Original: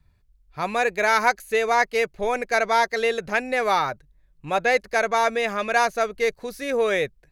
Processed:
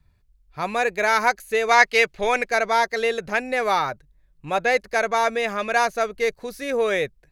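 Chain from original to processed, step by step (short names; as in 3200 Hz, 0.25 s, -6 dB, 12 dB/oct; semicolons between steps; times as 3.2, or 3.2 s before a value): 1.69–2.49 bell 3100 Hz +9 dB 2.9 oct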